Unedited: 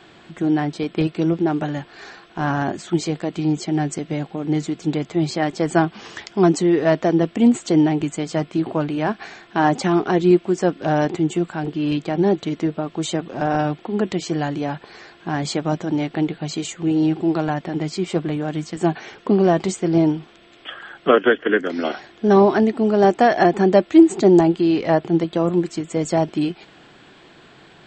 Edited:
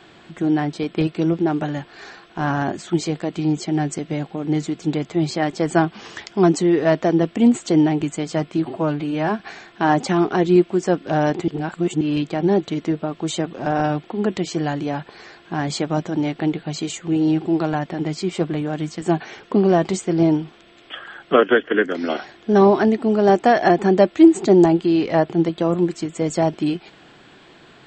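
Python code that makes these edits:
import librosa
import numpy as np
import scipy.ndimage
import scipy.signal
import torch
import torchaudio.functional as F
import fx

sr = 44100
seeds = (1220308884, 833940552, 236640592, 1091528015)

y = fx.edit(x, sr, fx.stretch_span(start_s=8.65, length_s=0.5, factor=1.5),
    fx.reverse_span(start_s=11.23, length_s=0.53), tone=tone)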